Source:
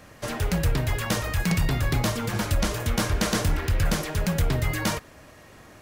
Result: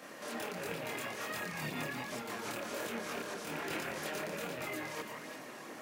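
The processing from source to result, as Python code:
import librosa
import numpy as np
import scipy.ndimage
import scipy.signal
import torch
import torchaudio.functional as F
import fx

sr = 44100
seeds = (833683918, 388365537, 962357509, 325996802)

y = fx.rattle_buzz(x, sr, strikes_db=-27.0, level_db=-26.0)
y = scipy.signal.sosfilt(scipy.signal.butter(4, 210.0, 'highpass', fs=sr, output='sos'), y)
y = fx.over_compress(y, sr, threshold_db=-37.0, ratio=-1.0)
y = fx.echo_alternate(y, sr, ms=170, hz=2300.0, feedback_pct=60, wet_db=-3.0)
y = fx.chorus_voices(y, sr, voices=2, hz=1.4, base_ms=25, depth_ms=3.0, mix_pct=50)
y = y * librosa.db_to_amplitude(-2.5)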